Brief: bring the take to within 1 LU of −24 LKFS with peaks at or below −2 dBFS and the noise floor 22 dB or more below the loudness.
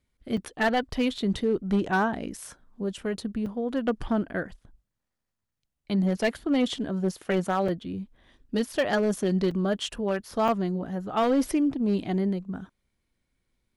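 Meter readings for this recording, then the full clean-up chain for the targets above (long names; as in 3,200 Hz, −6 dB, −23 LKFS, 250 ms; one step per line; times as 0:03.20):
share of clipped samples 0.9%; peaks flattened at −17.5 dBFS; number of dropouts 6; longest dropout 4.1 ms; integrated loudness −27.5 LKFS; sample peak −17.5 dBFS; target loudness −24.0 LKFS
→ clipped peaks rebuilt −17.5 dBFS
repair the gap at 0:00.37/0:01.18/0:03.46/0:07.68/0:09.51/0:10.48, 4.1 ms
level +3.5 dB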